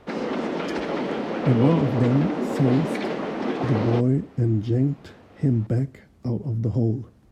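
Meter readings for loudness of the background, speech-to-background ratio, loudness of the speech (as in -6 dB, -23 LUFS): -27.0 LUFS, 3.0 dB, -24.0 LUFS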